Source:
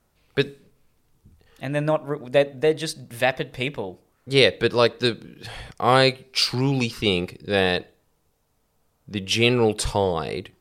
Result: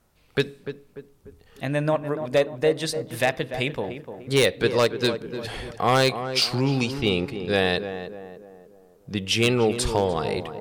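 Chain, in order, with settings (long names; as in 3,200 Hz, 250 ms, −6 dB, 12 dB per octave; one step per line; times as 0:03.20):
0:06.92–0:07.47: low-pass filter 3,100 Hz → 8,200 Hz 6 dB per octave
in parallel at −0.5 dB: downward compressor 16 to 1, threshold −26 dBFS, peak gain reduction 16 dB
on the sum: wave folding −7 dBFS
tape delay 296 ms, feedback 51%, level −7.5 dB, low-pass 1,200 Hz
level −3.5 dB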